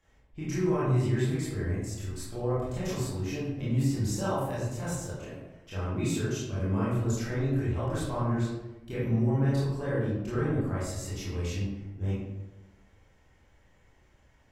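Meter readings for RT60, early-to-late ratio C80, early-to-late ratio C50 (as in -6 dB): 1.0 s, 3.0 dB, -1.0 dB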